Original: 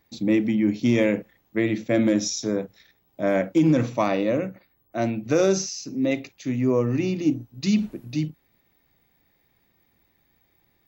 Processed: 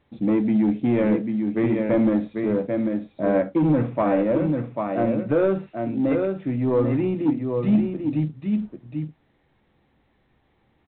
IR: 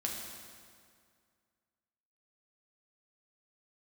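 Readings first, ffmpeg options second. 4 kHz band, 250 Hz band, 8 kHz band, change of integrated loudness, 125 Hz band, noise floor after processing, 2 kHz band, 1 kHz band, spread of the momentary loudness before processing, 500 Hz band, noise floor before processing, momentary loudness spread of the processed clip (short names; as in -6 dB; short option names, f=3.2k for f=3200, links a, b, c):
under -10 dB, +2.0 dB, under -40 dB, +1.0 dB, +2.0 dB, -65 dBFS, -4.0 dB, +2.0 dB, 9 LU, +1.5 dB, -67 dBFS, 7 LU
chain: -filter_complex "[0:a]asplit=2[a][b];[b]aecho=0:1:793:0.501[c];[a][c]amix=inputs=2:normalize=0,asoftclip=type=tanh:threshold=-15.5dB,lowpass=1.5k,asplit=2[d][e];[e]adelay=14,volume=-10.5dB[f];[d][f]amix=inputs=2:normalize=0,volume=2.5dB" -ar 8000 -c:a pcm_alaw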